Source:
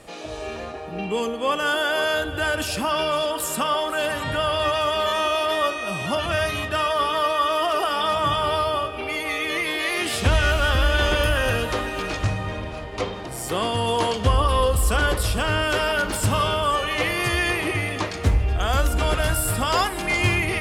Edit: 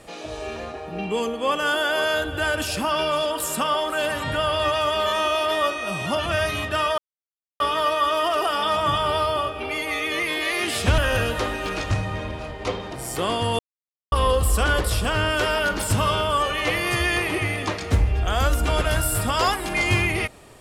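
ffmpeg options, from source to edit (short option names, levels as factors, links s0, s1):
-filter_complex "[0:a]asplit=5[s0][s1][s2][s3][s4];[s0]atrim=end=6.98,asetpts=PTS-STARTPTS,afade=t=out:st=6.976:d=0.004:c=hsin,apad=pad_dur=0.62[s5];[s1]atrim=start=6.98:end=10.362,asetpts=PTS-STARTPTS,afade=t=in:d=0.004:c=hsin[s6];[s2]atrim=start=11.308:end=13.92,asetpts=PTS-STARTPTS,afade=t=out:st=2.608:d=0.004:c=hsin[s7];[s3]atrim=start=13.92:end=14.45,asetpts=PTS-STARTPTS,volume=0[s8];[s4]atrim=start=14.45,asetpts=PTS-STARTPTS,afade=t=in:d=0.004:c=hsin[s9];[s5][s6]concat=n=2:v=0:a=1[s10];[s7][s8][s9]concat=n=3:v=0:a=1[s11];[s10][s11]acrossfade=d=0.004:c1=hsin:c2=hsin"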